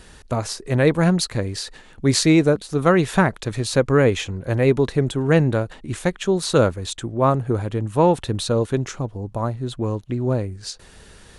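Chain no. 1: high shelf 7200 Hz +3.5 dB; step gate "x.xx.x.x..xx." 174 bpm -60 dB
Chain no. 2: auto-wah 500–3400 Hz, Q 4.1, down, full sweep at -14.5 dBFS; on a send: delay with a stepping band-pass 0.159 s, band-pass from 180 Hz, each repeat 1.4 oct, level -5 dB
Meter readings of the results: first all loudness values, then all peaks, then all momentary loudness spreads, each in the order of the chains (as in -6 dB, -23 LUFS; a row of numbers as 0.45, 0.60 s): -23.0, -27.0 LUFS; -3.0, -10.0 dBFS; 11, 17 LU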